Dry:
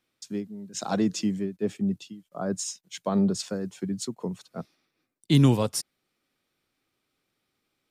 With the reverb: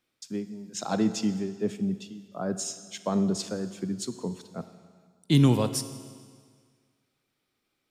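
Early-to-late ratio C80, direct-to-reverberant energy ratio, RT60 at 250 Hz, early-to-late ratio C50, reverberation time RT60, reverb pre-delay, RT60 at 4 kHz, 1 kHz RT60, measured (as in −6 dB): 13.0 dB, 11.0 dB, 1.8 s, 12.0 dB, 1.8 s, 27 ms, 1.7 s, 1.8 s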